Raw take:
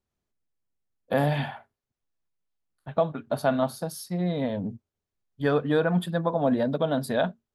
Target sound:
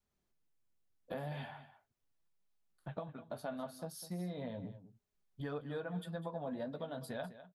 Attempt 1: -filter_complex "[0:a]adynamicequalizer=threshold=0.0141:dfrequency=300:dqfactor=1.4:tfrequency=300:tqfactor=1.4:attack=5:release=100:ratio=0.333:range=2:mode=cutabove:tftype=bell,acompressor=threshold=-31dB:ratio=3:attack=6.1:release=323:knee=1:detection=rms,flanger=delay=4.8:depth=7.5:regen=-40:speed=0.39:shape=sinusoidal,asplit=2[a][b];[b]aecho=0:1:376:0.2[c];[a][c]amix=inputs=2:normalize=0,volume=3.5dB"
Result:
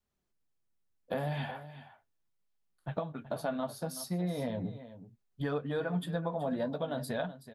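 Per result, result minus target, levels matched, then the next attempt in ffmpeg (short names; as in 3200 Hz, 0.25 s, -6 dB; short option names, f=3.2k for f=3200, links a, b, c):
echo 0.174 s late; compressor: peak gain reduction -7.5 dB
-filter_complex "[0:a]adynamicequalizer=threshold=0.0141:dfrequency=300:dqfactor=1.4:tfrequency=300:tqfactor=1.4:attack=5:release=100:ratio=0.333:range=2:mode=cutabove:tftype=bell,acompressor=threshold=-31dB:ratio=3:attack=6.1:release=323:knee=1:detection=rms,flanger=delay=4.8:depth=7.5:regen=-40:speed=0.39:shape=sinusoidal,asplit=2[a][b];[b]aecho=0:1:202:0.2[c];[a][c]amix=inputs=2:normalize=0,volume=3.5dB"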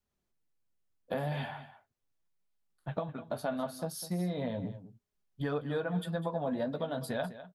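compressor: peak gain reduction -7.5 dB
-filter_complex "[0:a]adynamicequalizer=threshold=0.0141:dfrequency=300:dqfactor=1.4:tfrequency=300:tqfactor=1.4:attack=5:release=100:ratio=0.333:range=2:mode=cutabove:tftype=bell,acompressor=threshold=-42.5dB:ratio=3:attack=6.1:release=323:knee=1:detection=rms,flanger=delay=4.8:depth=7.5:regen=-40:speed=0.39:shape=sinusoidal,asplit=2[a][b];[b]aecho=0:1:202:0.2[c];[a][c]amix=inputs=2:normalize=0,volume=3.5dB"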